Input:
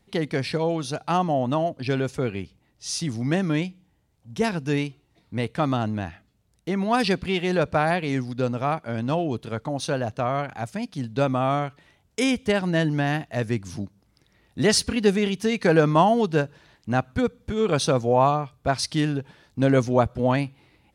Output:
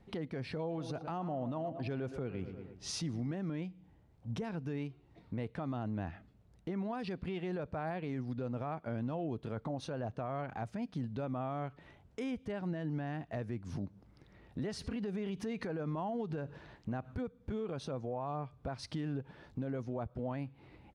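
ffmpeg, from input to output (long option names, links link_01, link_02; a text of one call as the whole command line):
ffmpeg -i in.wav -filter_complex "[0:a]asplit=3[link_01][link_02][link_03];[link_01]afade=type=out:start_time=0.7:duration=0.02[link_04];[link_02]asplit=2[link_05][link_06];[link_06]adelay=115,lowpass=frequency=3400:poles=1,volume=-15dB,asplit=2[link_07][link_08];[link_08]adelay=115,lowpass=frequency=3400:poles=1,volume=0.48,asplit=2[link_09][link_10];[link_10]adelay=115,lowpass=frequency=3400:poles=1,volume=0.48,asplit=2[link_11][link_12];[link_12]adelay=115,lowpass=frequency=3400:poles=1,volume=0.48[link_13];[link_05][link_07][link_09][link_11][link_13]amix=inputs=5:normalize=0,afade=type=in:start_time=0.7:duration=0.02,afade=type=out:start_time=3.34:duration=0.02[link_14];[link_03]afade=type=in:start_time=3.34:duration=0.02[link_15];[link_04][link_14][link_15]amix=inputs=3:normalize=0,asettb=1/sr,asplit=3[link_16][link_17][link_18];[link_16]atrim=end=13.764[link_19];[link_17]atrim=start=13.76:end=17.11,asetpts=PTS-STARTPTS,afade=type=in:duration=0.004:curve=qsin,afade=type=out:start_time=3.346:duration=0.004:curve=qsin,acompressor=threshold=-27dB:ratio=6:attack=3.2:release=140:knee=1:detection=peak[link_20];[link_18]atrim=start=17.106[link_21];[link_19][link_20]acrossfade=duration=0.004:curve1=hsin:curve2=qsin[link_22];[link_22][link_21]acrossfade=duration=0.004:curve1=qsin:curve2=hsin,lowpass=frequency=1200:poles=1,acompressor=threshold=-36dB:ratio=10,alimiter=level_in=9.5dB:limit=-24dB:level=0:latency=1:release=24,volume=-9.5dB,volume=3.5dB" out.wav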